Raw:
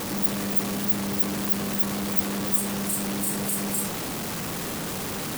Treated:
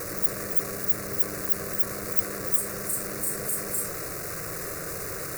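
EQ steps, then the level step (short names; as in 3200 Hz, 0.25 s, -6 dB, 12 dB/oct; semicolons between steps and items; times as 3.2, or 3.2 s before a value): fixed phaser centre 870 Hz, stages 6; 0.0 dB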